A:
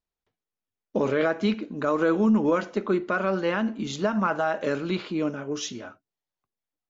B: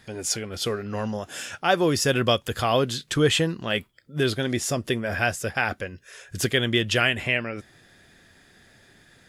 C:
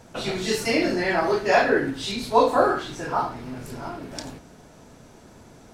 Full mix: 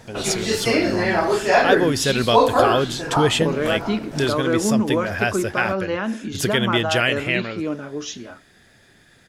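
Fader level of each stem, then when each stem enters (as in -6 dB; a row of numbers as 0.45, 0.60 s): +1.0, +1.5, +2.5 dB; 2.45, 0.00, 0.00 s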